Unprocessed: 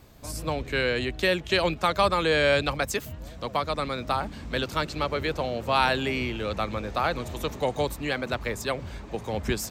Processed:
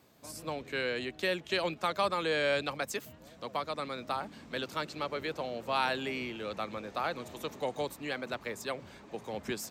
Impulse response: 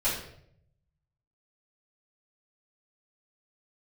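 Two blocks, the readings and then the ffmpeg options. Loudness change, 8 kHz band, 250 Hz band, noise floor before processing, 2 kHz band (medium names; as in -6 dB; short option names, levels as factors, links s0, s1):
-7.5 dB, -7.5 dB, -8.5 dB, -42 dBFS, -7.5 dB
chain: -af "highpass=170,volume=0.422"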